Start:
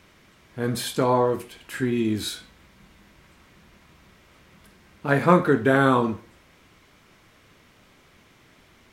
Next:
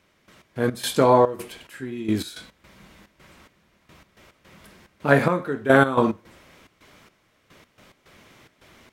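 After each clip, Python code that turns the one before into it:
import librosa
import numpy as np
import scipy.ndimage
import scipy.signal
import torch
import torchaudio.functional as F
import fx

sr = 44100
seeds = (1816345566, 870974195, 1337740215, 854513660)

y = fx.peak_eq(x, sr, hz=580.0, db=3.0, octaves=0.42)
y = fx.step_gate(y, sr, bpm=108, pattern='..x.x.xxx.xx.', floor_db=-12.0, edge_ms=4.5)
y = fx.low_shelf(y, sr, hz=93.0, db=-5.5)
y = y * 10.0 ** (4.0 / 20.0)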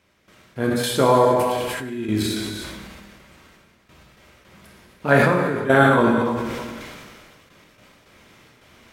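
y = fx.echo_feedback(x, sr, ms=308, feedback_pct=27, wet_db=-22)
y = fx.rev_gated(y, sr, seeds[0], gate_ms=450, shape='falling', drr_db=2.0)
y = fx.sustainer(y, sr, db_per_s=27.0)
y = y * 10.0 ** (-1.0 / 20.0)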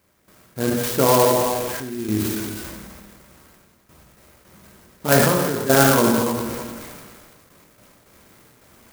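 y = fx.clock_jitter(x, sr, seeds[1], jitter_ms=0.09)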